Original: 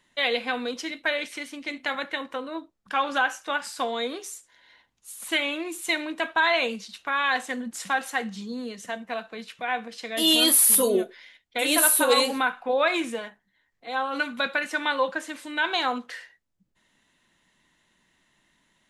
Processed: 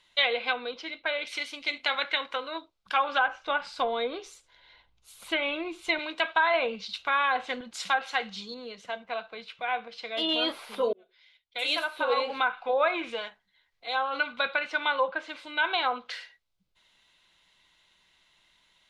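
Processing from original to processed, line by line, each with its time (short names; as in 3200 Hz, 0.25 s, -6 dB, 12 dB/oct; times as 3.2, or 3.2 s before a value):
0.53–1.27 tape spacing loss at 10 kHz 25 dB
2.01–2.58 bell 1800 Hz +5 dB
3.28–5.99 tilt -3 dB/oct
6.54–7.61 low shelf 350 Hz +7.5 dB
8.54–10.29 LPF 1700 Hz 6 dB/oct
10.93–12.66 fade in
13.96–16.06 LPF 2200 Hz 6 dB/oct
whole clip: notch 1800 Hz, Q 5.2; treble ducked by the level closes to 1500 Hz, closed at -20.5 dBFS; ten-band EQ 125 Hz -4 dB, 250 Hz -12 dB, 2000 Hz +3 dB, 4000 Hz +8 dB, 8000 Hz -5 dB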